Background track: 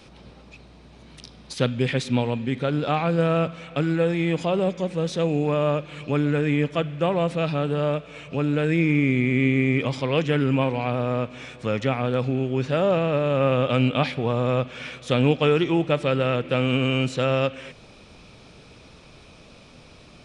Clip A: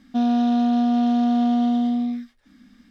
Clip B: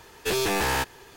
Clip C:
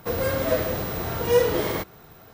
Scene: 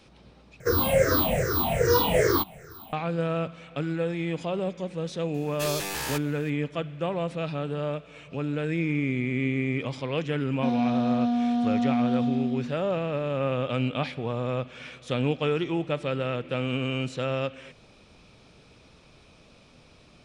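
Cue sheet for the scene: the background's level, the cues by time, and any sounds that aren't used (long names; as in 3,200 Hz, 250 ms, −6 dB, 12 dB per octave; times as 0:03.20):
background track −6.5 dB
0:00.60: overwrite with C −2.5 dB + rippled gain that drifts along the octave scale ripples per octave 0.52, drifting −2.5 Hz, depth 24 dB
0:05.34: mix in B −11 dB + high-shelf EQ 2,500 Hz +10 dB
0:10.48: mix in A −5.5 dB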